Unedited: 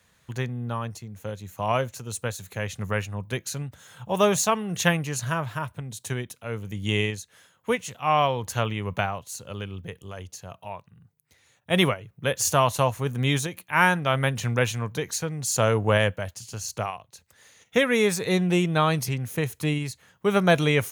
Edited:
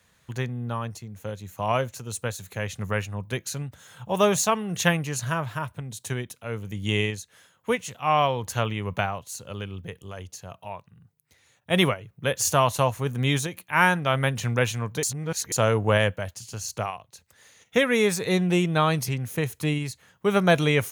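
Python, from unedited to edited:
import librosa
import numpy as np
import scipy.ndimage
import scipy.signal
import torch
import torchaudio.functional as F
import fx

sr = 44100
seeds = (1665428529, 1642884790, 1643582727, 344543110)

y = fx.edit(x, sr, fx.reverse_span(start_s=15.03, length_s=0.49), tone=tone)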